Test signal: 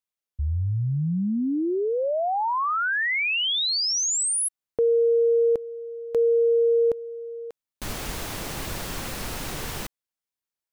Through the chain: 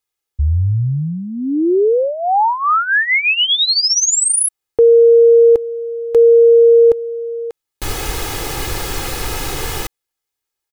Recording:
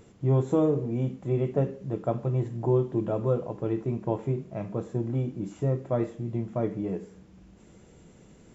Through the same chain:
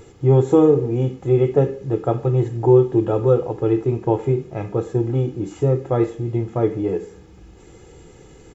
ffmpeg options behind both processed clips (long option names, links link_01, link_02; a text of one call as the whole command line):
ffmpeg -i in.wav -af "aecho=1:1:2.4:0.65,volume=8dB" out.wav